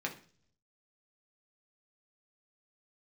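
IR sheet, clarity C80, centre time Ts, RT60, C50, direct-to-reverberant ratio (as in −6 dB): 17.0 dB, 13 ms, 0.45 s, 12.0 dB, 0.0 dB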